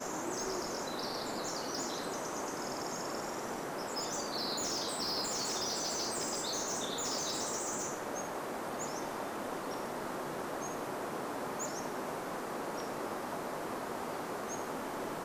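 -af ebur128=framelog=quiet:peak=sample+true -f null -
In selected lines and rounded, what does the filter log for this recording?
Integrated loudness:
  I:         -36.9 LUFS
  Threshold: -46.9 LUFS
Loudness range:
  LRA:         4.8 LU
  Threshold: -56.7 LUFS
  LRA low:   -38.9 LUFS
  LRA high:  -34.2 LUFS
Sample peak:
  Peak:      -23.7 dBFS
True peak:
  Peak:      -23.6 dBFS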